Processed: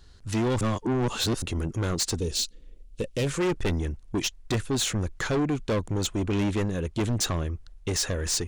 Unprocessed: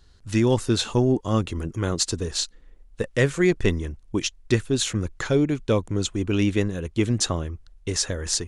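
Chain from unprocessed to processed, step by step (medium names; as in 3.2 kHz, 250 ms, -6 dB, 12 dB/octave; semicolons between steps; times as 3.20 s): saturation -24.5 dBFS, distortion -7 dB; 0.61–1.42 s: reverse; 2.19–3.27 s: high-order bell 1.2 kHz -11.5 dB; trim +2.5 dB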